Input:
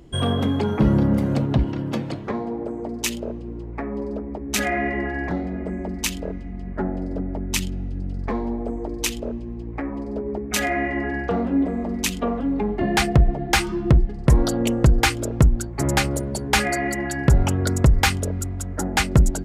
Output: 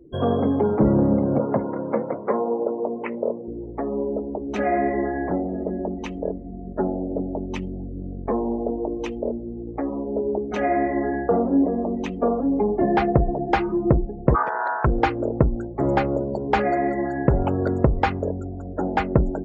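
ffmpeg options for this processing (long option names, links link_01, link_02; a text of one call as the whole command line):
ffmpeg -i in.wav -filter_complex "[0:a]asettb=1/sr,asplit=3[link_01][link_02][link_03];[link_01]atrim=end=1.394[link_04];[link_02]atrim=start=1.39:end=3.48,asetpts=PTS-STARTPTS,afade=type=in:duration=0.004:curve=qsin,afade=type=out:start_time=2.086:duration=0.004:curve=qsin,highpass=frequency=120:width=0.5412,highpass=frequency=120:width=1.3066,equalizer=frequency=140:width_type=q:width=4:gain=-7,equalizer=frequency=310:width_type=q:width=4:gain=-7,equalizer=frequency=510:width_type=q:width=4:gain=6,equalizer=frequency=1000:width_type=q:width=4:gain=6,equalizer=frequency=1400:width_type=q:width=4:gain=6,equalizer=frequency=2100:width_type=q:width=4:gain=8,lowpass=frequency=2500:width=0.5412,lowpass=frequency=2500:width=1.3066[link_05];[link_03]atrim=start=3.476[link_06];[link_04][link_05]acrossfade=duration=0.004:curve1=hsin:curve2=qsin[link_07];[link_07][link_06]acrossfade=duration=0.004:curve1=qsin:curve2=hsin,asplit=3[link_08][link_09][link_10];[link_08]afade=type=out:start_time=14.34:duration=0.02[link_11];[link_09]aeval=exprs='val(0)*sin(2*PI*1200*n/s)':channel_layout=same,afade=type=in:start_time=14.34:duration=0.02,afade=type=out:start_time=14.84:duration=0.02[link_12];[link_10]afade=type=in:start_time=14.84:duration=0.02[link_13];[link_11][link_12][link_13]amix=inputs=3:normalize=0,lowpass=frequency=1700:poles=1,equalizer=frequency=520:width_type=o:width=2.7:gain=13.5,afftdn=noise_reduction=24:noise_floor=-33,volume=-7.5dB" out.wav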